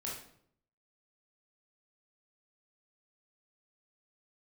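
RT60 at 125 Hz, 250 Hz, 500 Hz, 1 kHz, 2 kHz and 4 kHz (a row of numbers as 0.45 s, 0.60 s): 0.90 s, 0.80 s, 0.70 s, 0.60 s, 0.55 s, 0.50 s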